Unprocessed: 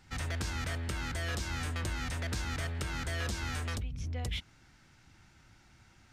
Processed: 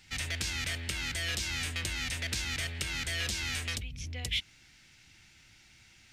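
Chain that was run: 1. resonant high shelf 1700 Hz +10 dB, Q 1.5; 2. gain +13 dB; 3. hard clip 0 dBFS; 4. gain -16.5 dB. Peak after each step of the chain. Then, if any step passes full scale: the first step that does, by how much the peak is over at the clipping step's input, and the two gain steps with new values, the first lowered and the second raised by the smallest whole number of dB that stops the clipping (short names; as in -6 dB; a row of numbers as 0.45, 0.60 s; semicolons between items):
-15.0, -2.0, -2.0, -18.5 dBFS; no overload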